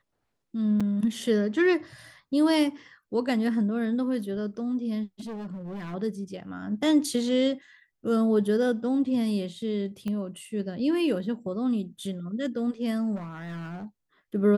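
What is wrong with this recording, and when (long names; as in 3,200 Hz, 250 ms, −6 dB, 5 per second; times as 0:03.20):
0:00.80–0:00.81: drop-out 5.4 ms
0:05.20–0:05.95: clipping −33 dBFS
0:10.08: click −22 dBFS
0:13.15–0:13.85: clipping −33 dBFS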